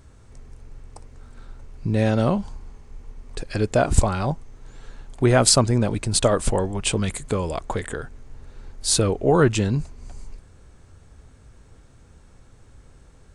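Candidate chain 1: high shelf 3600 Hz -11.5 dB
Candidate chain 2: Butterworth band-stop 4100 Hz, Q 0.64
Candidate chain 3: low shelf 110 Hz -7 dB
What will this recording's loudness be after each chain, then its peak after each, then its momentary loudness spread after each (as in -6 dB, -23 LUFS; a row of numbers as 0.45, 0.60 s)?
-23.0, -22.5, -22.5 LUFS; -3.0, -2.5, -2.5 dBFS; 16, 16, 15 LU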